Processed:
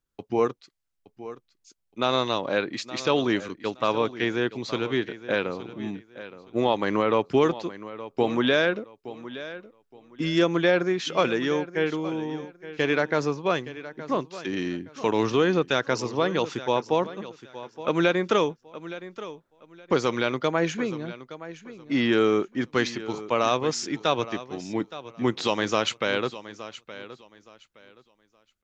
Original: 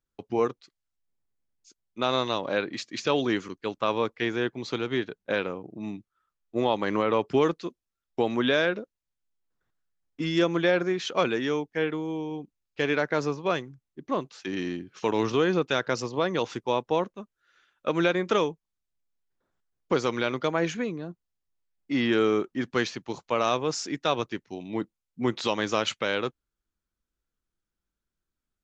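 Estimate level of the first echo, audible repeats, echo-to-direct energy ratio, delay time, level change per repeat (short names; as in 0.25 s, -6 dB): -15.0 dB, 2, -14.5 dB, 0.869 s, -12.5 dB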